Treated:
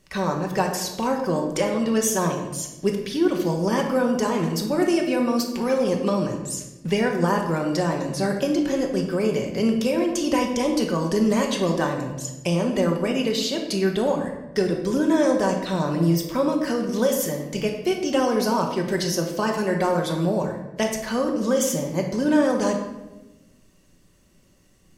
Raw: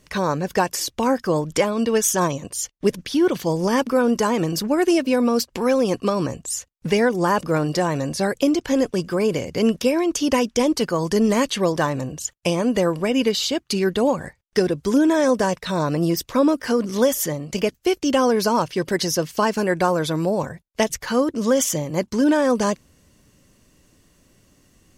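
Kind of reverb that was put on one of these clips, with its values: shoebox room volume 520 m³, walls mixed, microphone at 1.1 m; gain -5 dB

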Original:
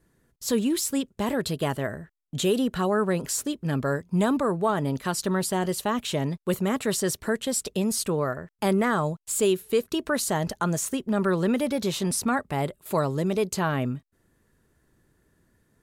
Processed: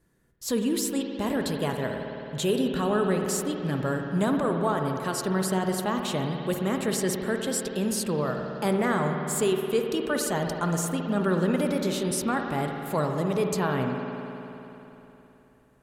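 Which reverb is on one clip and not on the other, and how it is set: spring tank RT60 3.4 s, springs 53 ms, chirp 40 ms, DRR 3 dB; gain -2.5 dB

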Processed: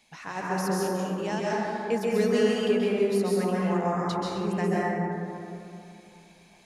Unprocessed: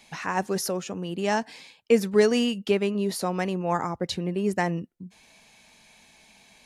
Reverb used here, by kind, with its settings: plate-style reverb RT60 2.8 s, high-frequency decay 0.3×, pre-delay 0.12 s, DRR -6.5 dB; gain -8.5 dB

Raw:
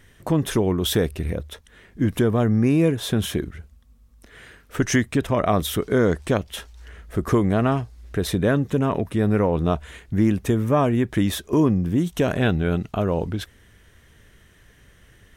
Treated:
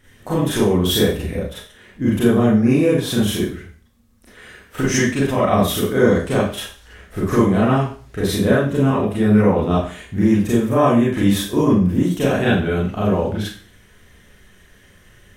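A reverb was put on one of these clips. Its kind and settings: Schroeder reverb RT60 0.43 s, combs from 30 ms, DRR -8 dB; gain -4 dB

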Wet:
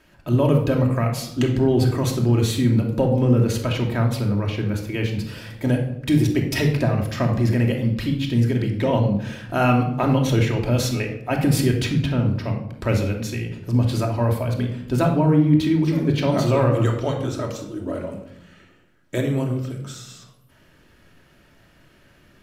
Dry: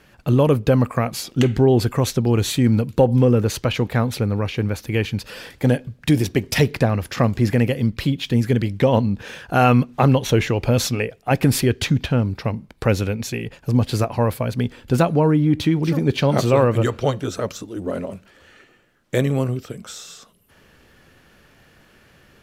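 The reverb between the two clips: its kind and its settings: shoebox room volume 2000 m³, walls furnished, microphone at 2.8 m; gain -5.5 dB

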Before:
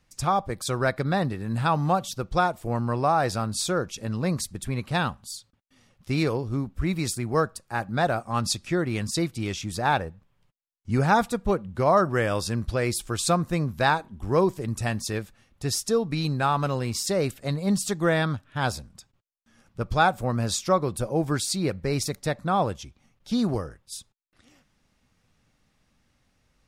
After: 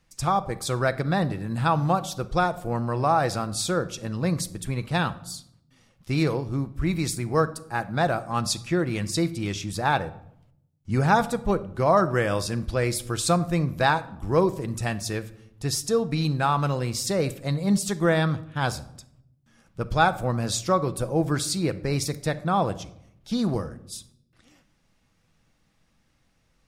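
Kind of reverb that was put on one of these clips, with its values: shoebox room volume 2000 m³, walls furnished, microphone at 0.69 m

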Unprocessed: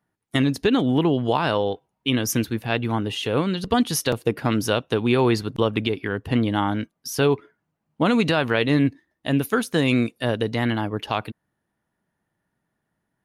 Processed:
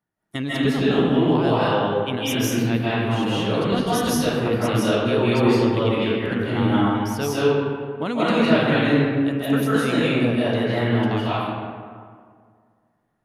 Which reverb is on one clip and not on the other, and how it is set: digital reverb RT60 2 s, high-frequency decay 0.5×, pre-delay 0.12 s, DRR -9 dB; gain -7.5 dB

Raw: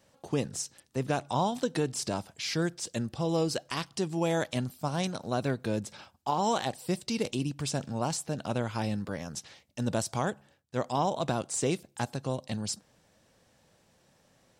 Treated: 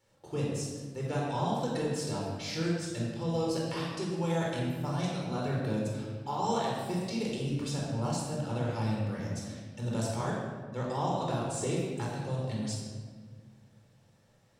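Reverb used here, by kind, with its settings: shoebox room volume 1700 m³, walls mixed, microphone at 4.3 m; gain -10 dB

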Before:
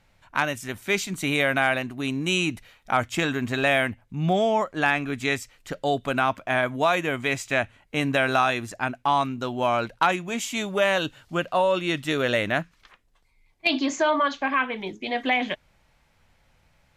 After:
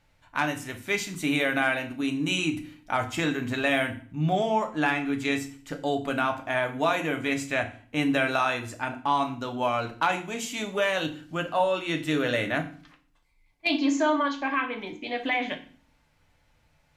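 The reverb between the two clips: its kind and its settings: FDN reverb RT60 0.44 s, low-frequency decay 1.5×, high-frequency decay 0.95×, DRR 4 dB; gain -4.5 dB

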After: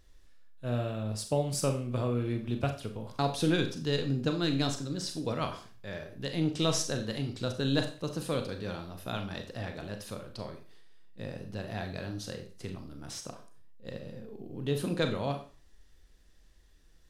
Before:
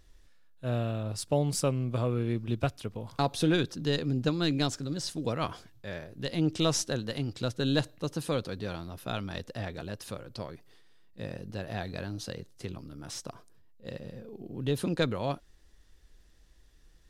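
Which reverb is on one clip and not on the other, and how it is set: Schroeder reverb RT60 0.39 s, combs from 29 ms, DRR 5.5 dB; gain -2 dB

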